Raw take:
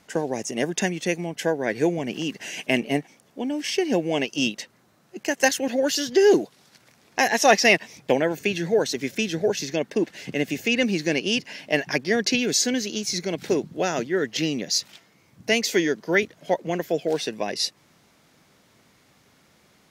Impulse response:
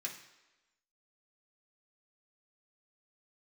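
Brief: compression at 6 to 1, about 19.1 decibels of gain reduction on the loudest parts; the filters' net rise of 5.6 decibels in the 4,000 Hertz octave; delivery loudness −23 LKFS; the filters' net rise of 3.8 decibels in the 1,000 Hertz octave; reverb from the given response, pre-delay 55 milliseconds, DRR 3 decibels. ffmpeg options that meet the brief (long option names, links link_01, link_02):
-filter_complex "[0:a]equalizer=frequency=1000:width_type=o:gain=5.5,equalizer=frequency=4000:width_type=o:gain=7.5,acompressor=threshold=-30dB:ratio=6,asplit=2[link_01][link_02];[1:a]atrim=start_sample=2205,adelay=55[link_03];[link_02][link_03]afir=irnorm=-1:irlink=0,volume=-2.5dB[link_04];[link_01][link_04]amix=inputs=2:normalize=0,volume=9dB"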